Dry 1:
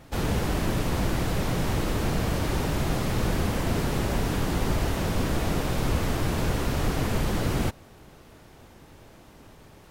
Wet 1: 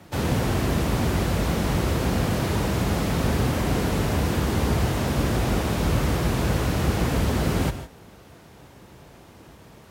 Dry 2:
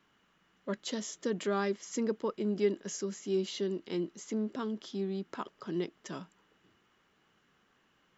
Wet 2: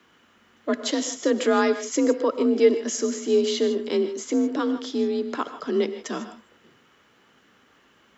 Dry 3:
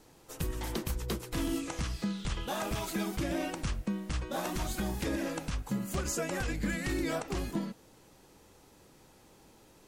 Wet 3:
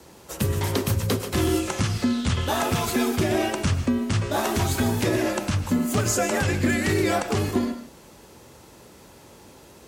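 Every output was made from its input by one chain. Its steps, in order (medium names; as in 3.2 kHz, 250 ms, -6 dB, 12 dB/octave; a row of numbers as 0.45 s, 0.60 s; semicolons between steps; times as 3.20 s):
frequency shift +43 Hz; gated-style reverb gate 180 ms rising, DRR 10 dB; normalise loudness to -24 LUFS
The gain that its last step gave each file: +2.0 dB, +11.0 dB, +10.0 dB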